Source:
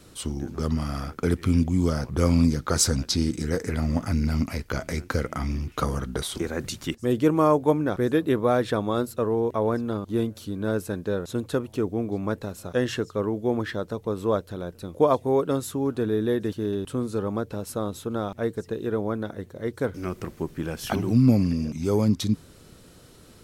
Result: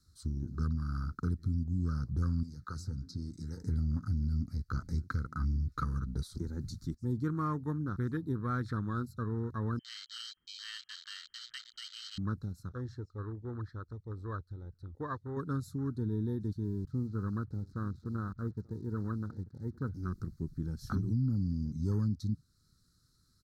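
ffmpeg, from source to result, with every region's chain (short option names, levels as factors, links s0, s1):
-filter_complex "[0:a]asettb=1/sr,asplit=3[s0][s1][s2];[s0]atrim=end=2.434[s3];[s1]atrim=start=2.43:end=3.62,asetpts=PTS-STARTPTS,afade=t=in:d=0.004:c=qsin,afade=t=out:st=1.186:d=0.004:c=qsin,highpass=55,bandreject=f=89.18:t=h:w=4,bandreject=f=178.36:t=h:w=4,bandreject=f=267.54:t=h:w=4,bandreject=f=356.72:t=h:w=4,bandreject=f=445.9:t=h:w=4,bandreject=f=535.08:t=h:w=4,bandreject=f=624.26:t=h:w=4,bandreject=f=713.44:t=h:w=4,bandreject=f=802.62:t=h:w=4,bandreject=f=891.8:t=h:w=4,bandreject=f=980.98:t=h:w=4,bandreject=f=1070.16:t=h:w=4,bandreject=f=1159.34:t=h:w=4,bandreject=f=1248.52:t=h:w=4,bandreject=f=1337.7:t=h:w=4,bandreject=f=1426.88:t=h:w=4,bandreject=f=1516.06:t=h:w=4,bandreject=f=1605.24:t=h:w=4,bandreject=f=1694.42:t=h:w=4,bandreject=f=1783.6:t=h:w=4,bandreject=f=1872.78:t=h:w=4,bandreject=f=1961.96:t=h:w=4,bandreject=f=2051.14:t=h:w=4,bandreject=f=2140.32:t=h:w=4,bandreject=f=2229.5:t=h:w=4,bandreject=f=2318.68:t=h:w=4,bandreject=f=2407.86:t=h:w=4,bandreject=f=2497.04:t=h:w=4,bandreject=f=2586.22:t=h:w=4,acrossover=split=540|1200[s4][s5][s6];[s4]acompressor=threshold=0.02:ratio=4[s7];[s5]acompressor=threshold=0.0178:ratio=4[s8];[s6]acompressor=threshold=0.0141:ratio=4[s9];[s7][s8][s9]amix=inputs=3:normalize=0[s10];[s2]atrim=start=3.616[s11];[s3][s10]acrossfade=d=0.004:c1=hsin:c2=qsin[s12];[s12][s11]acrossfade=d=0.004:c1=qsin:c2=hsin,asettb=1/sr,asplit=3[s13][s14][s15];[s13]atrim=end=9.794[s16];[s14]atrim=start=9.79:end=12.18,asetpts=PTS-STARTPTS,afade=t=in:d=0.004:c=qsin,afade=t=out:st=2.386:d=0.004:c=qsin,bandreject=f=60:t=h:w=6,bandreject=f=120:t=h:w=6,bandreject=f=180:t=h:w=6,bandreject=f=240:t=h:w=6,bandreject=f=300:t=h:w=6,bandreject=f=360:t=h:w=6,bandreject=f=420:t=h:w=6,bandreject=f=480:t=h:w=6,bandreject=f=540:t=h:w=6,lowpass=f=2800:t=q:w=0.5098,lowpass=f=2800:t=q:w=0.6013,lowpass=f=2800:t=q:w=0.9,lowpass=f=2800:t=q:w=2.563,afreqshift=-3300[s17];[s15]atrim=start=12.176[s18];[s16][s17]acrossfade=d=0.004:c1=hsin:c2=qsin[s19];[s19][s18]acrossfade=d=0.004:c1=qsin:c2=hsin,asettb=1/sr,asplit=3[s20][s21][s22];[s20]atrim=end=12.694[s23];[s21]atrim=start=12.69:end=15.37,asetpts=PTS-STARTPTS,afade=t=in:d=0.004:c=qsin,afade=t=out:st=2.676:d=0.004:c=qsin,lowpass=f=1800:p=1,equalizer=f=190:t=o:w=0.95:g=-14[s24];[s22]atrim=start=15.366[s25];[s23][s24]acrossfade=d=0.004:c1=hsin:c2=qsin[s26];[s26][s25]acrossfade=d=0.004:c1=qsin:c2=hsin,asettb=1/sr,asplit=3[s27][s28][s29];[s27]atrim=end=16.644[s30];[s28]atrim=start=16.64:end=19.89,asetpts=PTS-STARTPTS,afade=t=in:d=0.004:c=qsin,afade=t=out:st=3.246:d=0.004:c=qsin,lowpass=2000,acrusher=bits=7:mix=0:aa=0.5,aecho=1:1:885:0.112,atrim=end_sample=143325[s31];[s29]atrim=start=19.886[s32];[s30][s31]acrossfade=d=0.004:c1=hsin:c2=qsin[s33];[s33][s32]acrossfade=d=0.004:c1=qsin:c2=hsin,afwtdn=0.0224,firequalizer=gain_entry='entry(100,0);entry(630,-30);entry(1300,-2);entry(2800,-28);entry(4100,4);entry(8300,-4)':delay=0.05:min_phase=1,alimiter=limit=0.0631:level=0:latency=1:release=376"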